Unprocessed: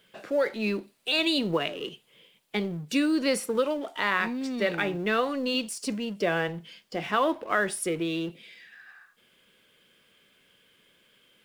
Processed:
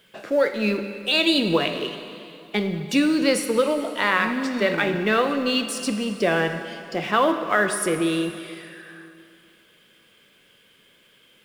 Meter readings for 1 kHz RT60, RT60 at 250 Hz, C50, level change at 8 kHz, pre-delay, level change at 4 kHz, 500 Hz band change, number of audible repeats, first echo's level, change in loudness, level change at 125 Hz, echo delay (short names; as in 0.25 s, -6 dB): 2.6 s, 2.7 s, 8.5 dB, +5.5 dB, 7 ms, +5.5 dB, +5.5 dB, none, none, +5.5 dB, +5.5 dB, none